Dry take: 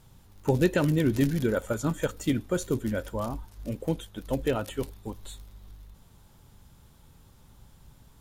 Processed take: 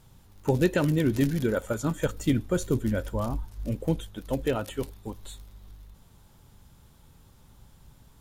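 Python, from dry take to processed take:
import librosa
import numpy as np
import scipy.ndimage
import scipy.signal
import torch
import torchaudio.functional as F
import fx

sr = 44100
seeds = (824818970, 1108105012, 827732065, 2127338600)

y = fx.low_shelf(x, sr, hz=150.0, db=7.5, at=(2.03, 4.14))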